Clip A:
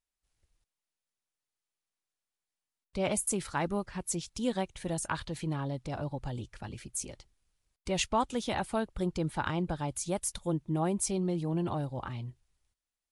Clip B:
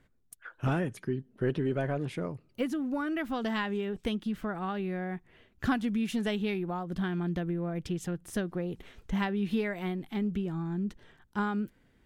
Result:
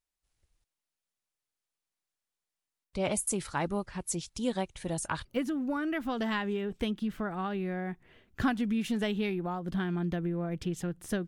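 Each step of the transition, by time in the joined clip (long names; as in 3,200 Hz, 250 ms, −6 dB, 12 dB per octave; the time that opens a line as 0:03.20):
clip A
0:05.25: continue with clip B from 0:02.49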